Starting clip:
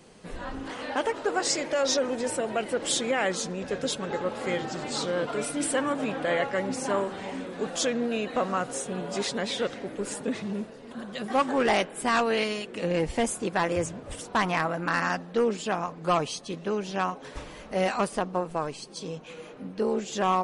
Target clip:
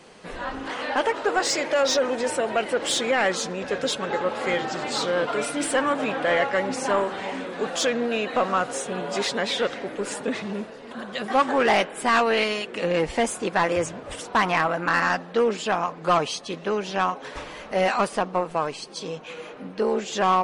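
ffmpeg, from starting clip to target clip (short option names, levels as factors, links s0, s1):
-filter_complex "[0:a]asplit=2[s0][s1];[s1]highpass=f=720:p=1,volume=3.16,asoftclip=type=tanh:threshold=0.211[s2];[s0][s2]amix=inputs=2:normalize=0,lowpass=f=3500:p=1,volume=0.501,volume=1.41"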